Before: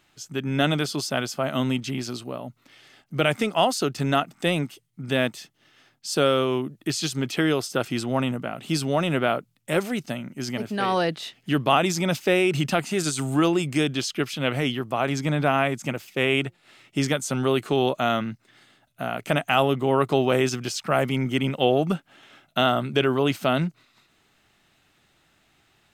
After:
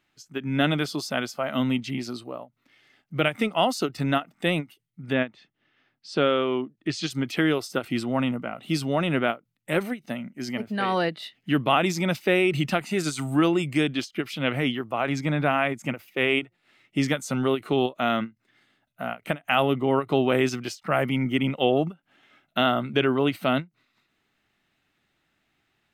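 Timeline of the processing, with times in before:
5.12–7.09 s: low-pass 2.7 kHz -> 6.5 kHz
whole clip: spectral noise reduction 8 dB; graphic EQ 250/2000/8000 Hz +4/+4/-4 dB; endings held to a fixed fall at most 350 dB/s; trim -2.5 dB

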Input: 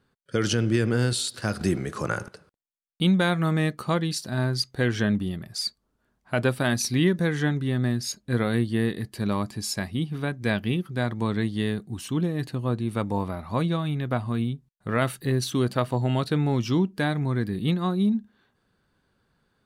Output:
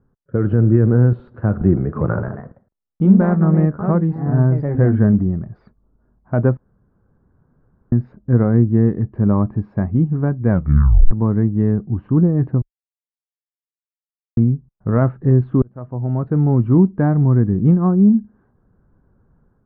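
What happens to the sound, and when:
1.79–5.55 s: ever faster or slower copies 168 ms, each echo +2 st, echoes 2, each echo -6 dB
6.57–7.92 s: room tone
10.50 s: tape stop 0.61 s
12.62–14.37 s: mute
15.62–16.80 s: fade in
whole clip: tilt EQ -3 dB/octave; level rider gain up to 5 dB; low-pass 1.4 kHz 24 dB/octave

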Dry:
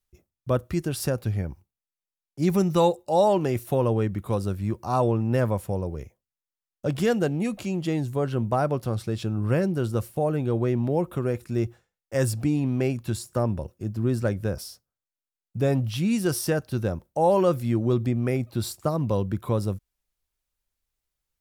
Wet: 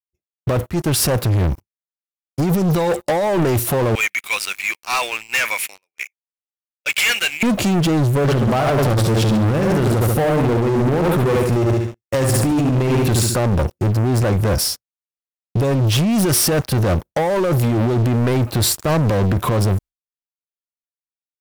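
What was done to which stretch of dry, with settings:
0.70–1.11 s: fade in linear, from -20 dB
3.95–7.43 s: resonant high-pass 2.3 kHz, resonance Q 7.1
8.21–13.35 s: feedback delay 70 ms, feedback 41%, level -4.5 dB
whole clip: expander -41 dBFS; compressor with a negative ratio -27 dBFS, ratio -1; waveshaping leveller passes 5

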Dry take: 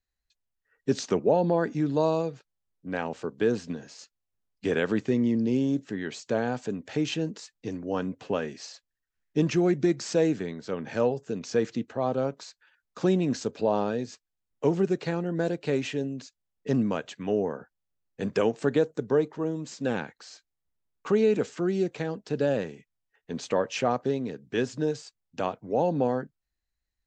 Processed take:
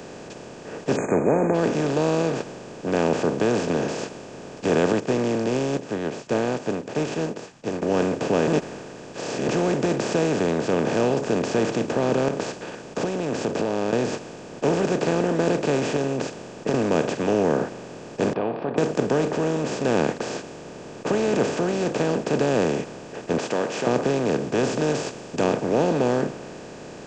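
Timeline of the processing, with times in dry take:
0.96–1.55 s: spectral selection erased 2.5–6.3 kHz
4.92–7.82 s: upward expansion 2.5:1, over -47 dBFS
8.47–9.48 s: reverse
12.28–13.93 s: compression, threshold -39 dBFS
15.96–16.74 s: compression, threshold -29 dBFS
18.33–18.78 s: cascade formant filter a
23.38–23.87 s: high-pass 990 Hz
24.63–25.44 s: treble shelf 4.2 kHz +11 dB
whole clip: spectral levelling over time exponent 0.2; bass shelf 120 Hz +4.5 dB; three bands expanded up and down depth 40%; trim -5.5 dB

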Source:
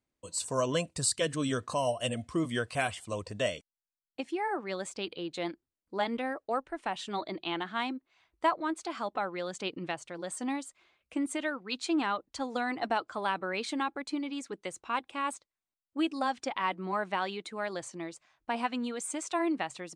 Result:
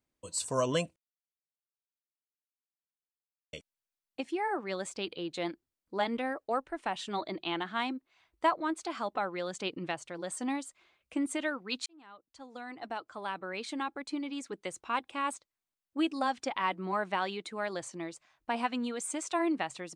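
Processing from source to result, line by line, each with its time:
0.96–3.53 s: mute
11.86–14.71 s: fade in

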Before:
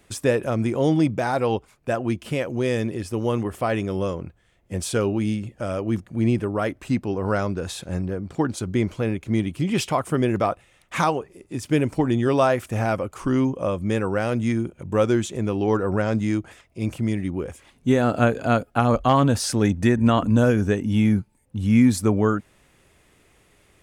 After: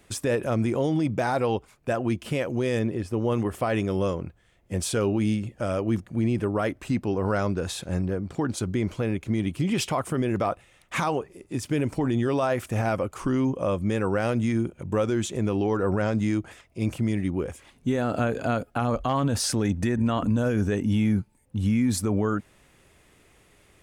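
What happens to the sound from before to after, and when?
2.79–3.32 s: treble shelf 2.9 kHz -9.5 dB
whole clip: peak limiter -16 dBFS

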